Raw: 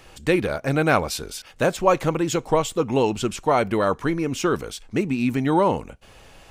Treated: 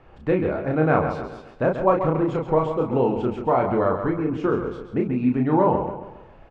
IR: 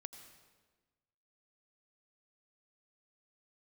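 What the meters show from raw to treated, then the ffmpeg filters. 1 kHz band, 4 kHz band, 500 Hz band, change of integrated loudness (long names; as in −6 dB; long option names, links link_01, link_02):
−0.5 dB, below −15 dB, +0.5 dB, 0.0 dB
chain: -filter_complex "[0:a]lowpass=1300,asplit=2[link_01][link_02];[link_02]adelay=32,volume=-3.5dB[link_03];[link_01][link_03]amix=inputs=2:normalize=0,aecho=1:1:135|270|405|540|675:0.376|0.158|0.0663|0.0278|0.0117,volume=-1.5dB"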